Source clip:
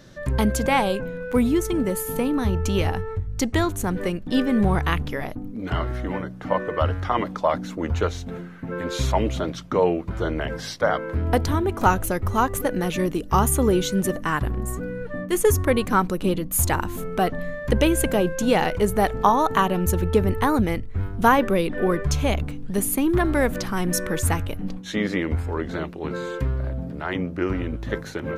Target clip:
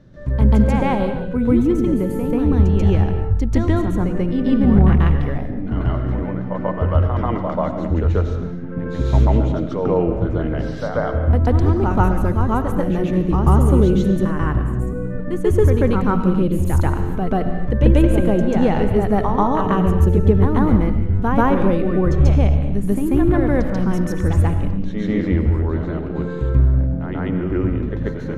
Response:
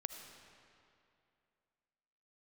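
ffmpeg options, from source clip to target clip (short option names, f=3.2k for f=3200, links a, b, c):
-filter_complex "[0:a]lowpass=f=1.8k:p=1,lowshelf=f=330:g=11.5,asplit=2[a][b];[1:a]atrim=start_sample=2205,afade=t=out:st=0.34:d=0.01,atrim=end_sample=15435,adelay=138[c];[b][c]afir=irnorm=-1:irlink=0,volume=7.5dB[d];[a][d]amix=inputs=2:normalize=0,volume=-7.5dB"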